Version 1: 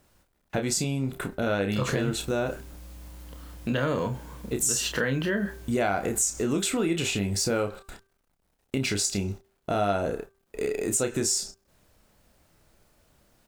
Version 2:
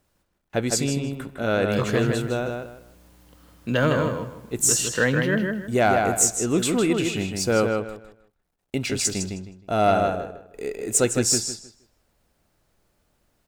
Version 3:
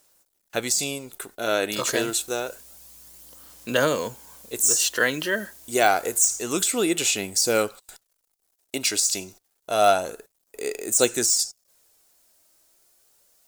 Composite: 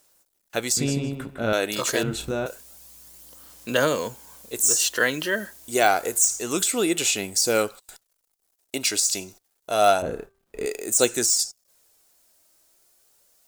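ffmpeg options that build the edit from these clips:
-filter_complex "[0:a]asplit=2[a][b];[2:a]asplit=4[c][d][e][f];[c]atrim=end=0.772[g];[1:a]atrim=start=0.768:end=1.532[h];[d]atrim=start=1.528:end=2.032[i];[a]atrim=start=2.028:end=2.462[j];[e]atrim=start=2.458:end=10.022[k];[b]atrim=start=10.018:end=10.662[l];[f]atrim=start=10.658[m];[g][h]acrossfade=d=0.004:c1=hsin:c2=hsin[n];[n][i]acrossfade=d=0.004:c1=hsin:c2=hsin[o];[o][j]acrossfade=d=0.004:c1=hsin:c2=hsin[p];[p][k]acrossfade=d=0.004:c1=hsin:c2=hsin[q];[q][l]acrossfade=d=0.004:c1=hsin:c2=hsin[r];[r][m]acrossfade=d=0.004:c1=hsin:c2=hsin"

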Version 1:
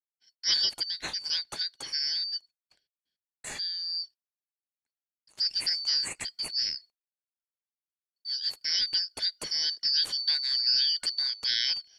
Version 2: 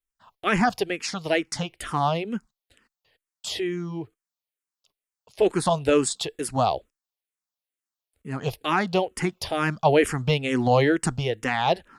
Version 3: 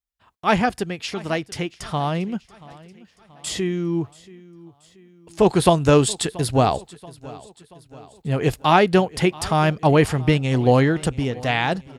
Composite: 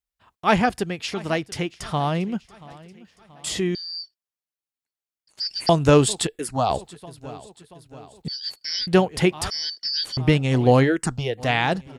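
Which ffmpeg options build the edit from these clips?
-filter_complex "[0:a]asplit=3[a][b][c];[1:a]asplit=2[d][e];[2:a]asplit=6[f][g][h][i][j][k];[f]atrim=end=3.752[l];[a]atrim=start=3.748:end=5.692[m];[g]atrim=start=5.688:end=6.272[n];[d]atrim=start=6.268:end=6.702[o];[h]atrim=start=6.698:end=8.282[p];[b]atrim=start=8.278:end=8.872[q];[i]atrim=start=8.868:end=9.502[r];[c]atrim=start=9.498:end=10.172[s];[j]atrim=start=10.168:end=10.89[t];[e]atrim=start=10.83:end=11.43[u];[k]atrim=start=11.37[v];[l][m]acrossfade=d=0.004:c1=hsin:c2=hsin[w];[w][n]acrossfade=d=0.004:c1=hsin:c2=hsin[x];[x][o]acrossfade=d=0.004:c1=hsin:c2=hsin[y];[y][p]acrossfade=d=0.004:c1=hsin:c2=hsin[z];[z][q]acrossfade=d=0.004:c1=hsin:c2=hsin[aa];[aa][r]acrossfade=d=0.004:c1=hsin:c2=hsin[ab];[ab][s]acrossfade=d=0.004:c1=hsin:c2=hsin[ac];[ac][t]acrossfade=d=0.004:c1=hsin:c2=hsin[ad];[ad][u]acrossfade=d=0.06:c1=tri:c2=tri[ae];[ae][v]acrossfade=d=0.06:c1=tri:c2=tri"

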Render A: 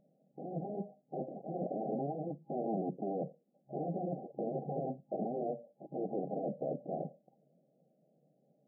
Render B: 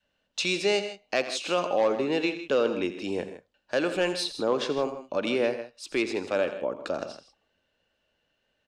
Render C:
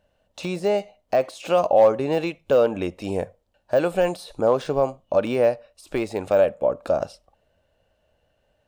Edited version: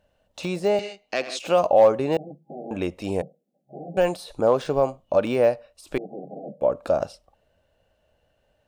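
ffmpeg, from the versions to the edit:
-filter_complex "[0:a]asplit=3[a][b][c];[2:a]asplit=5[d][e][f][g][h];[d]atrim=end=0.792[i];[1:a]atrim=start=0.788:end=1.392[j];[e]atrim=start=1.388:end=2.172[k];[a]atrim=start=2.168:end=2.712[l];[f]atrim=start=2.708:end=3.222[m];[b]atrim=start=3.218:end=3.972[n];[g]atrim=start=3.968:end=5.982[o];[c]atrim=start=5.978:end=6.612[p];[h]atrim=start=6.608[q];[i][j]acrossfade=d=0.004:c1=hsin:c2=hsin[r];[r][k]acrossfade=d=0.004:c1=hsin:c2=hsin[s];[s][l]acrossfade=d=0.004:c1=hsin:c2=hsin[t];[t][m]acrossfade=d=0.004:c1=hsin:c2=hsin[u];[u][n]acrossfade=d=0.004:c1=hsin:c2=hsin[v];[v][o]acrossfade=d=0.004:c1=hsin:c2=hsin[w];[w][p]acrossfade=d=0.004:c1=hsin:c2=hsin[x];[x][q]acrossfade=d=0.004:c1=hsin:c2=hsin"

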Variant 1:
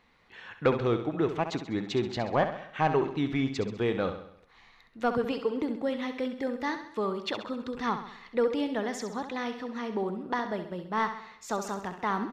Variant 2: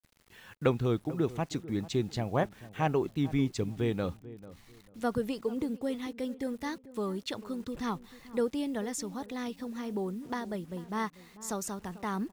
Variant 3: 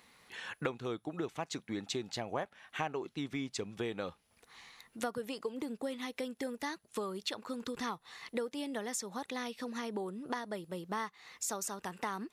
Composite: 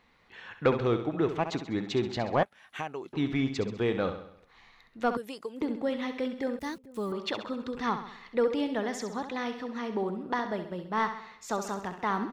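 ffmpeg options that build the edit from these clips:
-filter_complex "[2:a]asplit=2[a][b];[0:a]asplit=4[c][d][e][f];[c]atrim=end=2.432[g];[a]atrim=start=2.428:end=3.132[h];[d]atrim=start=3.128:end=5.172[i];[b]atrim=start=5.168:end=5.612[j];[e]atrim=start=5.608:end=6.592[k];[1:a]atrim=start=6.588:end=7.122[l];[f]atrim=start=7.118[m];[g][h]acrossfade=d=0.004:c1=hsin:c2=hsin[n];[n][i]acrossfade=d=0.004:c1=hsin:c2=hsin[o];[o][j]acrossfade=d=0.004:c1=hsin:c2=hsin[p];[p][k]acrossfade=d=0.004:c1=hsin:c2=hsin[q];[q][l]acrossfade=d=0.004:c1=hsin:c2=hsin[r];[r][m]acrossfade=d=0.004:c1=hsin:c2=hsin"

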